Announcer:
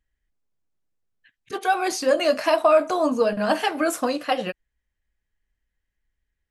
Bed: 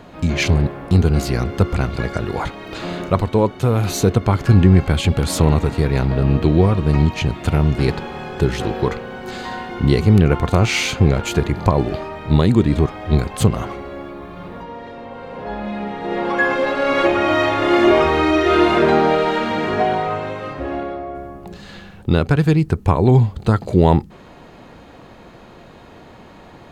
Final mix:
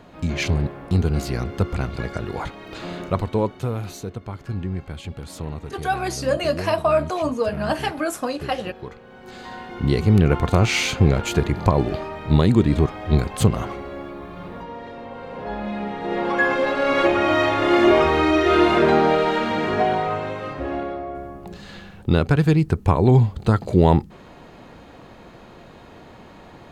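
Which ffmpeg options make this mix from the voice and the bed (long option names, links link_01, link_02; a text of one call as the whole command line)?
ffmpeg -i stem1.wav -i stem2.wav -filter_complex "[0:a]adelay=4200,volume=-2dB[link_01];[1:a]volume=9dB,afade=type=out:start_time=3.43:duration=0.59:silence=0.281838,afade=type=in:start_time=8.97:duration=1.42:silence=0.188365[link_02];[link_01][link_02]amix=inputs=2:normalize=0" out.wav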